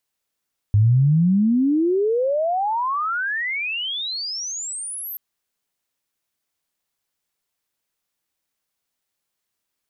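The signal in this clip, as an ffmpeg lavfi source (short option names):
-f lavfi -i "aevalsrc='pow(10,(-11.5-17*t/4.43)/20)*sin(2*PI*100*4.43/log(13000/100)*(exp(log(13000/100)*t/4.43)-1))':d=4.43:s=44100"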